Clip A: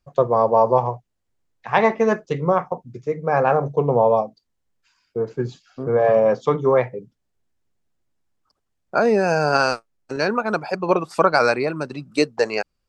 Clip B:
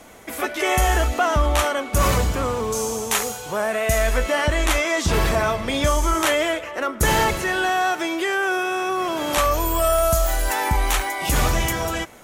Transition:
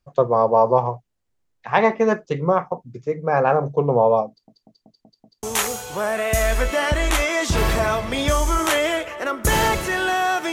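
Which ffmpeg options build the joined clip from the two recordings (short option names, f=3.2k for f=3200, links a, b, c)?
-filter_complex "[0:a]apad=whole_dur=10.52,atrim=end=10.52,asplit=6[a][b][c][d][e][f];[a]atrim=end=4.482[g];[b]atrim=start=4.288:end=4.482[h];[c]atrim=start=4.288:end=4.482[i];[d]atrim=start=4.288:end=4.482[j];[e]atrim=start=4.288:end=4.482[k];[f]atrim=start=4.288:end=4.482[l];[1:a]atrim=start=2.988:end=8.08[m];[g][h]acrossfade=d=0.004:c1=hsin:c2=hsin[n];[n][i]acrossfade=d=0.004:c1=hsin:c2=hsin[o];[o][j]acrossfade=d=0.004:c1=hsin:c2=hsin[p];[p][k]acrossfade=d=0.004:c1=hsin:c2=hsin[q];[q][l]acrossfade=d=0.004:c1=hsin:c2=hsin[r];[r][m]acrossfade=d=0.004:c1=hsin:c2=hsin"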